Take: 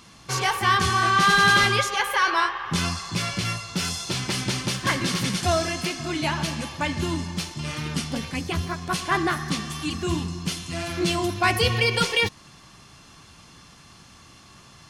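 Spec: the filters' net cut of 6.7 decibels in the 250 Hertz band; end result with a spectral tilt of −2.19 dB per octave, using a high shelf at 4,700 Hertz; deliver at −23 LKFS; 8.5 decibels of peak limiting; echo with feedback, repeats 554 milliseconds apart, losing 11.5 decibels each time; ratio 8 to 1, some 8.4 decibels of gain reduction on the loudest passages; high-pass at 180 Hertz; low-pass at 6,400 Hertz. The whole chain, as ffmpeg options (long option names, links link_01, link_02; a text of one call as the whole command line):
ffmpeg -i in.wav -af "highpass=180,lowpass=6400,equalizer=frequency=250:width_type=o:gain=-8.5,highshelf=frequency=4700:gain=5.5,acompressor=threshold=-22dB:ratio=8,alimiter=limit=-20.5dB:level=0:latency=1,aecho=1:1:554|1108|1662:0.266|0.0718|0.0194,volume=6.5dB" out.wav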